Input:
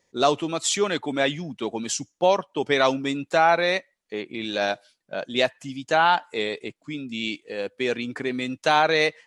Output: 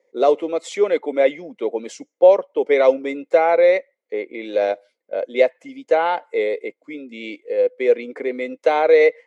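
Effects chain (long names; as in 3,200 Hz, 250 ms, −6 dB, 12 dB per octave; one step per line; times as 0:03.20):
high-pass filter 240 Hz 24 dB per octave
high-shelf EQ 2,300 Hz −10.5 dB
hollow resonant body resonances 500/2,100 Hz, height 17 dB, ringing for 25 ms
level −3 dB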